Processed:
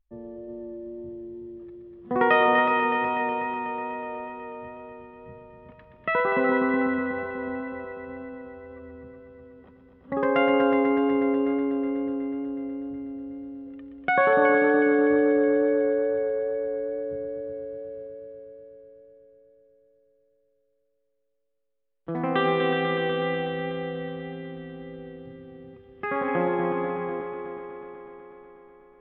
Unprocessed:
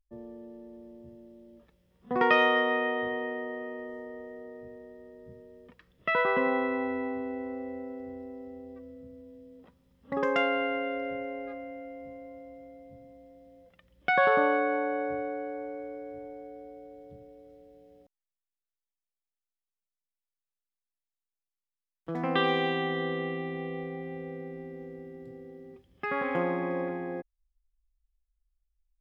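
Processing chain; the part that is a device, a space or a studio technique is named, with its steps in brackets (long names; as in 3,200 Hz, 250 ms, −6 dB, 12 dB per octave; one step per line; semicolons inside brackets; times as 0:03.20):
high-frequency loss of the air 330 metres
multi-head tape echo (echo machine with several playback heads 123 ms, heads all three, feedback 69%, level −10 dB; tape wow and flutter 10 cents)
level +4.5 dB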